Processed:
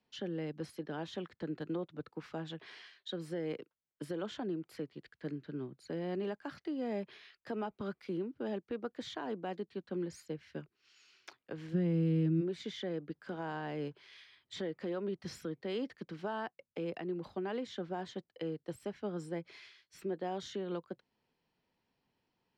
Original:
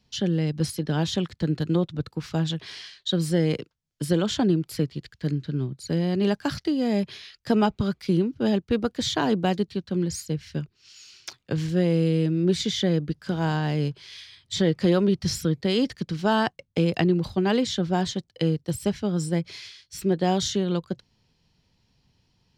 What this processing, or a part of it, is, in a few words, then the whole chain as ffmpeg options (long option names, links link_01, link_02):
DJ mixer with the lows and highs turned down: -filter_complex "[0:a]acrossover=split=240 2600:gain=0.126 1 0.178[link_01][link_02][link_03];[link_01][link_02][link_03]amix=inputs=3:normalize=0,alimiter=limit=-23dB:level=0:latency=1:release=261,asplit=3[link_04][link_05][link_06];[link_04]afade=type=out:start_time=11.73:duration=0.02[link_07];[link_05]asubboost=boost=9:cutoff=180,afade=type=in:start_time=11.73:duration=0.02,afade=type=out:start_time=12.4:duration=0.02[link_08];[link_06]afade=type=in:start_time=12.4:duration=0.02[link_09];[link_07][link_08][link_09]amix=inputs=3:normalize=0,volume=-6.5dB"